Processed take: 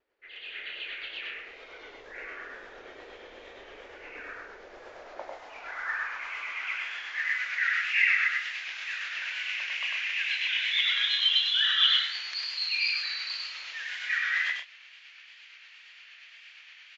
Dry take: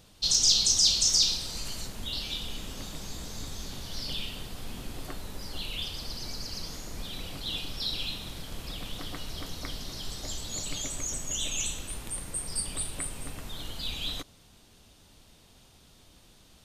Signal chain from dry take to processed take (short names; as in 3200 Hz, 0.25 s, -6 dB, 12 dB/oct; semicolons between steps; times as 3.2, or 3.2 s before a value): passive tone stack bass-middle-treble 10-0-10; AGC gain up to 15.5 dB; band-pass sweep 890 Hz -> 5200 Hz, 4.42–7.64; wow and flutter 48 cents; granular stretch 0.51×, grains 0.116 s; on a send: early reflections 49 ms -3 dB, 64 ms -8.5 dB; on the sum: speed mistake 15 ips tape played at 7.5 ips